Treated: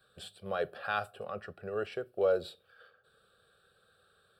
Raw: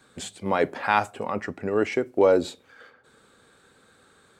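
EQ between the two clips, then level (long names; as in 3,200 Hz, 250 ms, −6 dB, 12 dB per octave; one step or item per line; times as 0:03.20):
high-shelf EQ 6,600 Hz +4.5 dB
phaser with its sweep stopped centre 1,400 Hz, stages 8
−8.0 dB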